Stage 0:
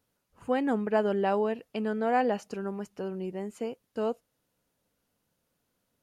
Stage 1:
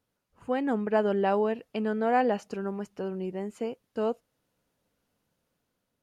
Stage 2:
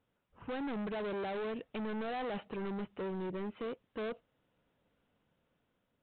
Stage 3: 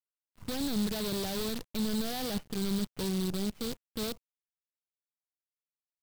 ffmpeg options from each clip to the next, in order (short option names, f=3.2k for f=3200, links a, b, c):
-af "highshelf=f=6.7k:g=-6,dynaudnorm=f=290:g=5:m=3.5dB,volume=-2dB"
-af "alimiter=limit=-23dB:level=0:latency=1:release=51,aresample=8000,asoftclip=type=hard:threshold=-37dB,aresample=44100,volume=1dB"
-af "acrusher=bits=7:dc=4:mix=0:aa=0.000001,bass=f=250:g=13,treble=f=4k:g=5,volume=-2dB"